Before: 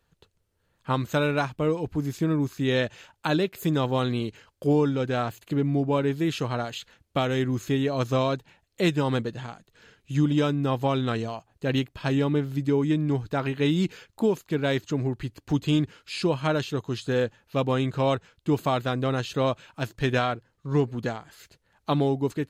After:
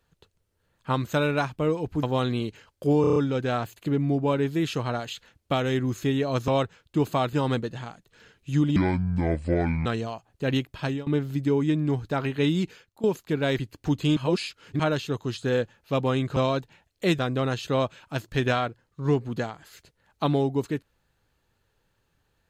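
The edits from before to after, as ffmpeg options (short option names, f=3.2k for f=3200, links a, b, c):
-filter_complex "[0:a]asplit=18[a][b][c][d][e][f][g][h][i][j][k][l][m][n][o][p][q][r];[a]atrim=end=2.032[s];[b]atrim=start=3.828:end=4.842[t];[c]atrim=start=4.808:end=4.842[u];[d]atrim=start=4.808:end=4.842[v];[e]atrim=start=4.808:end=4.842[w];[f]atrim=start=4.808:end=4.842[x];[g]atrim=start=4.808:end=8.132[y];[h]atrim=start=17.998:end=18.852[z];[i]atrim=start=8.948:end=10.384[aa];[j]atrim=start=10.38:end=11.07,asetpts=PTS-STARTPTS,asetrate=27783,aresample=44100[ab];[k]atrim=start=11.066:end=12.28,asetpts=PTS-STARTPTS,afade=t=out:st=0.964:d=0.25:silence=0.0668344[ac];[l]atrim=start=12.28:end=14.25,asetpts=PTS-STARTPTS,afade=t=in:d=0.004:c=hsin:silence=0.0668344,afade=t=out:st=1.43:d=0.54:silence=0.133352[ad];[m]atrim=start=14.25:end=14.802,asetpts=PTS-STARTPTS,afade=t=in:d=0.004:c=hsin:silence=0.133352[ae];[n]atrim=start=15.218:end=15.802[af];[o]atrim=start=15.798:end=16.432,asetpts=PTS-STARTPTS,areverse[ag];[p]atrim=start=16.428:end=18.002[ah];[q]atrim=start=8.128:end=8.952[ai];[r]atrim=start=18.848[aj];[s][t]acrossfade=d=0.004:c1=hsin:c2=hsin[ak];[ak][u]acrossfade=d=0.004:c1=hsin:c2=hsin[al];[al][v]acrossfade=d=0.004:c1=hsin:c2=hsin[am];[am][w]acrossfade=d=0.004:c1=hsin:c2=hsin[an];[an][x]acrossfade=d=0.004:c1=hsin:c2=hsin[ao];[ao][y]acrossfade=d=0.004:c1=hsin:c2=hsin[ap];[ap][z]acrossfade=d=0.004:c1=hsin:c2=hsin[aq];[aq][aa]acrossfade=d=0.004:c1=hsin:c2=hsin[ar];[ar][ab]acrossfade=d=0.004:c1=hsin:c2=hsin[as];[ac][ad][ae]concat=n=3:v=0:a=1[at];[as][at]acrossfade=d=0.004:c1=hsin:c2=hsin[au];[au][af]acrossfade=d=0.004:c1=hsin:c2=hsin[av];[av][ag]acrossfade=d=0.004:c1=hsin:c2=hsin[aw];[aw][ah]acrossfade=d=0.004:c1=hsin:c2=hsin[ax];[ax][ai]acrossfade=d=0.004:c1=hsin:c2=hsin[ay];[ay][aj]acrossfade=d=0.004:c1=hsin:c2=hsin"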